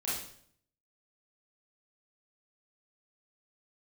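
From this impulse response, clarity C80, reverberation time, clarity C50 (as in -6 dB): 5.5 dB, 0.60 s, 0.5 dB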